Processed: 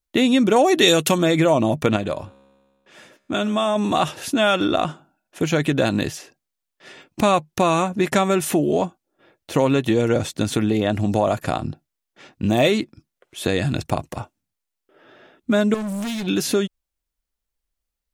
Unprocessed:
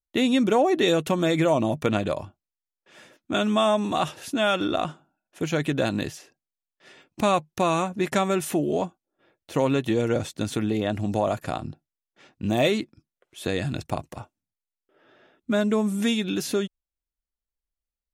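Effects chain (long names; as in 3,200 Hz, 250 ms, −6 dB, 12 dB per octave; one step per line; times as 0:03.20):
0:00.56–0:01.18: high-shelf EQ 2,700 Hz +11.5 dB
in parallel at +0.5 dB: downward compressor, threshold −27 dBFS, peak gain reduction 12 dB
0:01.96–0:03.76: on the sum: tuned comb filter 68 Hz, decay 1.7 s, harmonics all, mix 40%
0:15.74–0:16.27: gain into a clipping stage and back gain 26.5 dB
level +1.5 dB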